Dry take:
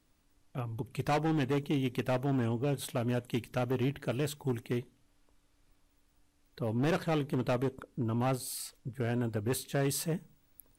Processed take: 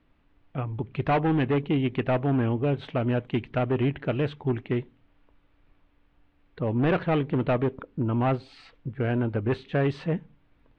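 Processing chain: LPF 3000 Hz 24 dB/oct; gain +6.5 dB

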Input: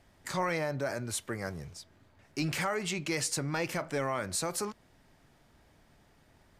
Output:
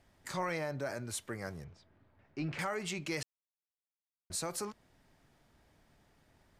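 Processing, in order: 1.64–2.59 Bessel low-pass 2100 Hz, order 2; 3.23–4.3 mute; gain -4.5 dB

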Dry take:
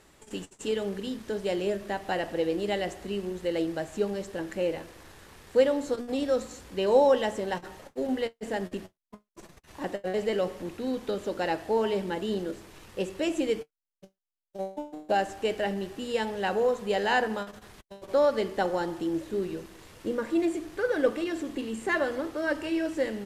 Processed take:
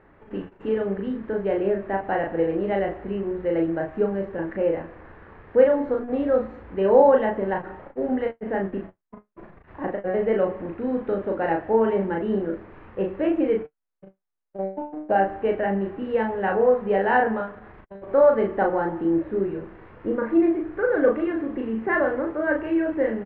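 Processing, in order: LPF 1900 Hz 24 dB/oct; doubler 36 ms -3 dB; gain +4 dB

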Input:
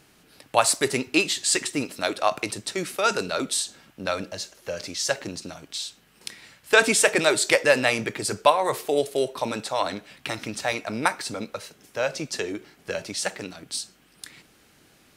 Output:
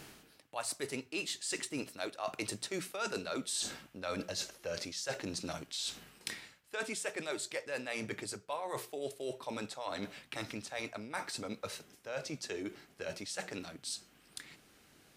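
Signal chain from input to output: Doppler pass-by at 3.16, 6 m/s, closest 5.1 m; notches 60/120/180 Hz; reverse; compressor 8:1, threshold -54 dBFS, peak gain reduction 34 dB; reverse; gain +17 dB

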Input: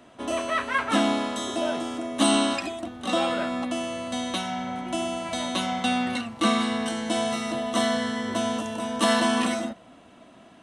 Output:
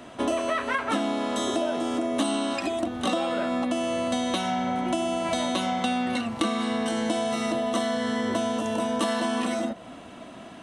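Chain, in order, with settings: dynamic EQ 440 Hz, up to +5 dB, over -38 dBFS, Q 0.73; compressor 12:1, threshold -31 dBFS, peak gain reduction 18 dB; gain +8 dB

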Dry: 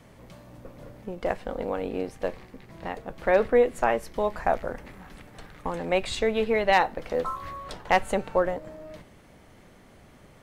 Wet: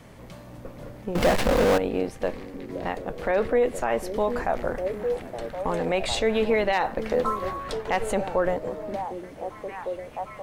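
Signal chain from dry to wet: delay with a stepping band-pass 0.753 s, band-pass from 280 Hz, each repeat 0.7 oct, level -8.5 dB; limiter -18 dBFS, peak gain reduction 10 dB; 1.15–1.78 power-law curve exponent 0.35; gain +4.5 dB

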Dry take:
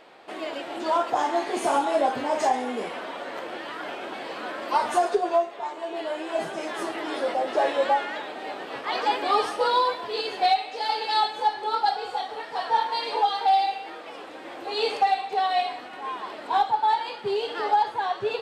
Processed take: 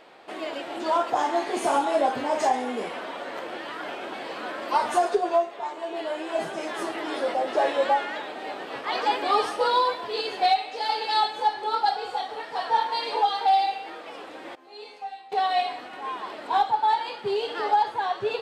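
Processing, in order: 14.55–15.32 resonator bank F3 minor, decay 0.32 s

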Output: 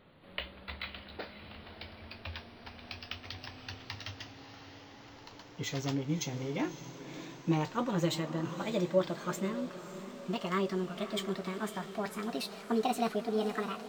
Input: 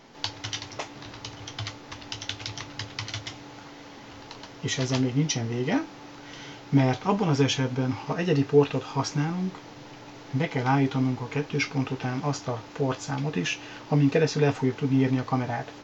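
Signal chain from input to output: speed glide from 62% -> 166%; diffused feedback echo 0.582 s, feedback 47%, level -12 dB; decimation joined by straight lines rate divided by 2×; gain -8.5 dB

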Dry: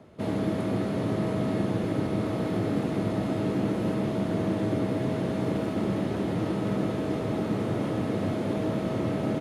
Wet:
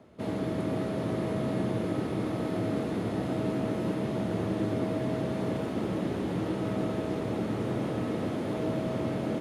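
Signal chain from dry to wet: notches 50/100/150/200 Hz; on a send: split-band echo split 490 Hz, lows 99 ms, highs 0.501 s, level -8 dB; on the sum: gain -3 dB

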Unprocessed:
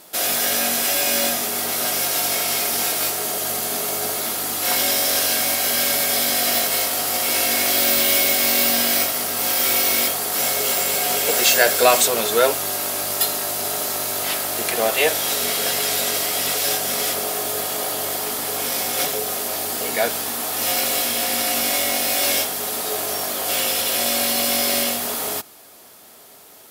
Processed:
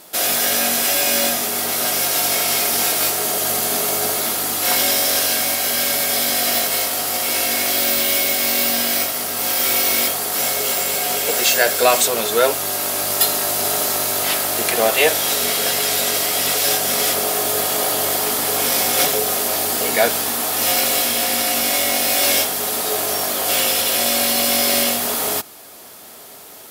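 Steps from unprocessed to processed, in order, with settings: vocal rider 2 s; gain +2 dB

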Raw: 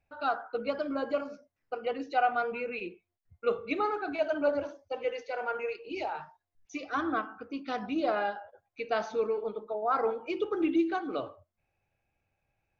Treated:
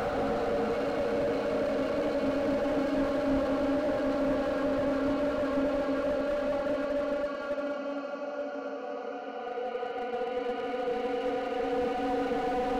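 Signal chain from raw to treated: Paulstretch 8.9×, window 1.00 s, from 0.51; HPF 130 Hz; slew limiter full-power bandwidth 13 Hz; gain +6 dB

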